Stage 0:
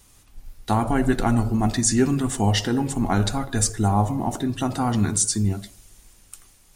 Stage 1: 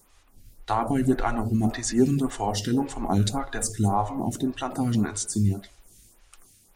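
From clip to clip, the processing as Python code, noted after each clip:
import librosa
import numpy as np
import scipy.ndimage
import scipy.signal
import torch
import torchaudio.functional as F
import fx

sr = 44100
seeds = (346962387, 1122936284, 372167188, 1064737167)

y = fx.stagger_phaser(x, sr, hz=1.8)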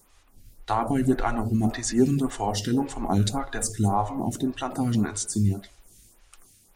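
y = x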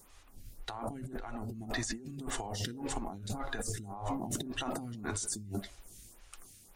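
y = fx.over_compress(x, sr, threshold_db=-33.0, ratio=-1.0)
y = y * librosa.db_to_amplitude(-6.5)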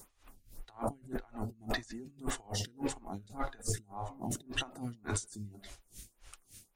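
y = x * 10.0 ** (-24 * (0.5 - 0.5 * np.cos(2.0 * np.pi * 3.5 * np.arange(len(x)) / sr)) / 20.0)
y = y * librosa.db_to_amplitude(5.0)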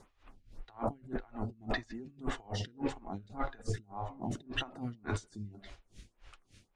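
y = scipy.signal.sosfilt(scipy.signal.butter(2, 3500.0, 'lowpass', fs=sr, output='sos'), x)
y = y * librosa.db_to_amplitude(1.0)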